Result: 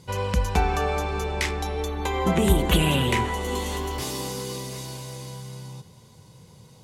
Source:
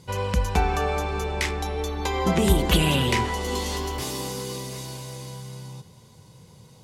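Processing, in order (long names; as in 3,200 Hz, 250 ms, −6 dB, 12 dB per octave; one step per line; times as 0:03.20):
0:01.85–0:03.91: parametric band 5,000 Hz −9.5 dB 0.49 octaves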